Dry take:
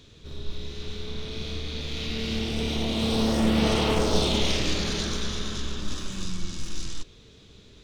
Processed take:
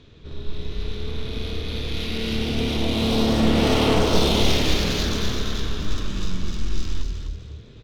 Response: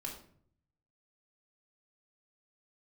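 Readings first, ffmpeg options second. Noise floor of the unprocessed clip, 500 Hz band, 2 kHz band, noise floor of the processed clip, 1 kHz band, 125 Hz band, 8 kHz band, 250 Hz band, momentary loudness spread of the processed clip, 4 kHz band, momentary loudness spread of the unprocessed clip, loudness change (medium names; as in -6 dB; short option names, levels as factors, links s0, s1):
-52 dBFS, +4.5 dB, +4.0 dB, -44 dBFS, +4.5 dB, +5.5 dB, +1.0 dB, +4.0 dB, 15 LU, +3.5 dB, 15 LU, +4.0 dB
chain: -filter_complex "[0:a]adynamicsmooth=sensitivity=7:basefreq=3400,asplit=5[s0][s1][s2][s3][s4];[s1]adelay=253,afreqshift=36,volume=0.501[s5];[s2]adelay=506,afreqshift=72,volume=0.17[s6];[s3]adelay=759,afreqshift=108,volume=0.0582[s7];[s4]adelay=1012,afreqshift=144,volume=0.0197[s8];[s0][s5][s6][s7][s8]amix=inputs=5:normalize=0,asplit=2[s9][s10];[1:a]atrim=start_sample=2205[s11];[s10][s11]afir=irnorm=-1:irlink=0,volume=0.188[s12];[s9][s12]amix=inputs=2:normalize=0,volume=1.33"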